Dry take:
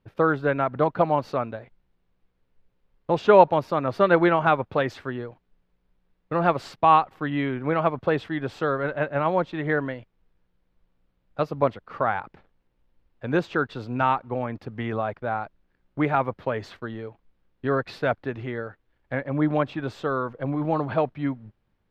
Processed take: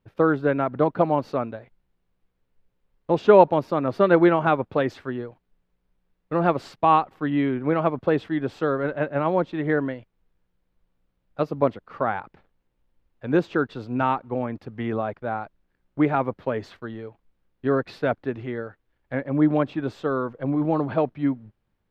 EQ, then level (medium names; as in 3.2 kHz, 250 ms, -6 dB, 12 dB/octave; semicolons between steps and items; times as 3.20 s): dynamic bell 290 Hz, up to +7 dB, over -35 dBFS, Q 0.76; -2.5 dB